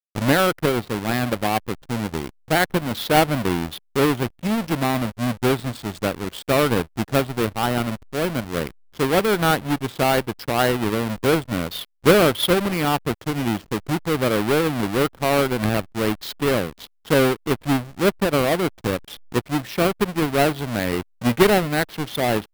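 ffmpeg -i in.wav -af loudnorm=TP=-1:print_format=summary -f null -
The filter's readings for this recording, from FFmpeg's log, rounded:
Input Integrated:    -21.7 LUFS
Input True Peak:      -3.6 dBTP
Input LRA:             2.4 LU
Input Threshold:     -31.8 LUFS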